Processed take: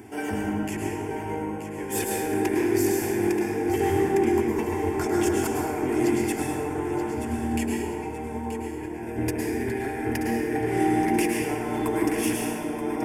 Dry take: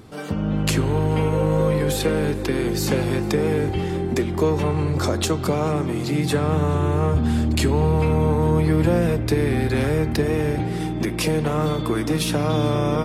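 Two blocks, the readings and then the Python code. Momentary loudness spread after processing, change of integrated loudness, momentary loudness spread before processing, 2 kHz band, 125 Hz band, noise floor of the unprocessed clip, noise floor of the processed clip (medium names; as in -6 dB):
9 LU, -5.0 dB, 4 LU, -2.0 dB, -14.0 dB, -26 dBFS, -34 dBFS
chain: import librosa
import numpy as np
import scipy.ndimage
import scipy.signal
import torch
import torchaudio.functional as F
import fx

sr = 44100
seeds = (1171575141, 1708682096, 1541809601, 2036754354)

p1 = scipy.signal.sosfilt(scipy.signal.butter(4, 98.0, 'highpass', fs=sr, output='sos'), x)
p2 = fx.over_compress(p1, sr, threshold_db=-25.0, ratio=-0.5)
p3 = fx.fixed_phaser(p2, sr, hz=810.0, stages=8)
p4 = 10.0 ** (-18.0 / 20.0) * np.tanh(p3 / 10.0 ** (-18.0 / 20.0))
p5 = p4 + fx.echo_feedback(p4, sr, ms=929, feedback_pct=38, wet_db=-10.0, dry=0)
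y = fx.rev_plate(p5, sr, seeds[0], rt60_s=1.7, hf_ratio=0.6, predelay_ms=95, drr_db=-1.5)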